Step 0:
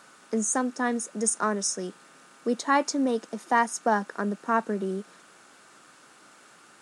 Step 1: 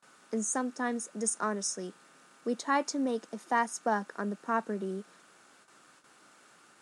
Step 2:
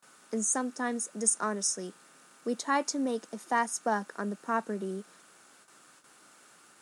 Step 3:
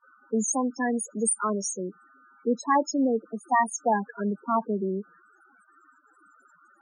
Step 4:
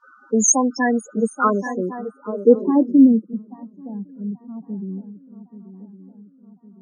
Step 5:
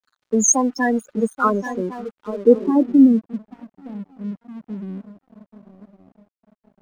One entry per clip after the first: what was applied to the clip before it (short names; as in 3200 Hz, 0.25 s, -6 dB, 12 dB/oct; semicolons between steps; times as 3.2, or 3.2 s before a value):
gate with hold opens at -44 dBFS; gain -5.5 dB
high shelf 8600 Hz +11 dB
loudest bins only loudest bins 8; gain +7 dB
swung echo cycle 1.109 s, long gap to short 3:1, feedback 50%, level -12 dB; low-pass sweep 5900 Hz -> 120 Hz, 0.66–3.57; gain +7.5 dB
crossover distortion -44.5 dBFS